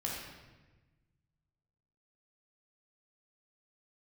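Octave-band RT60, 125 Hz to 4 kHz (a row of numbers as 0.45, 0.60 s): 2.2, 1.6, 1.3, 1.1, 1.2, 0.95 s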